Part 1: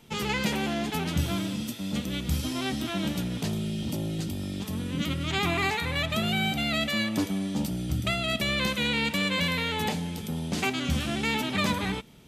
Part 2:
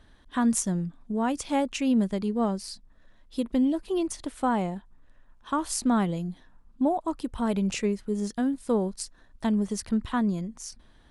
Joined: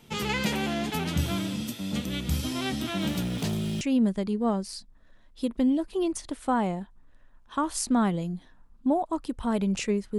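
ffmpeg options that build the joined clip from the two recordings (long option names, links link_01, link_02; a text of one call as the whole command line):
ffmpeg -i cue0.wav -i cue1.wav -filter_complex "[0:a]asettb=1/sr,asplit=3[link_01][link_02][link_03];[link_01]atrim=end=3.014[link_04];[link_02]atrim=start=3.01:end=3.81,asetpts=PTS-STARTPTS,afade=type=in:duration=0.004:curve=qsin,afade=type=out:start_time=0.796:duration=0.004:curve=qsin,aeval=exprs='val(0)+0.5*0.00944*sgn(val(0))':channel_layout=same[link_05];[link_03]atrim=start=3.806[link_06];[link_04][link_05]acrossfade=duration=0.004:curve1=hsin:curve2=qsin[link_07];[link_07][link_06]acrossfade=duration=0.004:curve1=qsin:curve2=hsin,apad=whole_dur=10.18,atrim=end=10.18,atrim=end=3.812[link_08];[1:a]atrim=start=1.758:end=8.13[link_09];[link_08][link_09]acrossfade=duration=0.004:curve1=hsin:curve2=hsin" out.wav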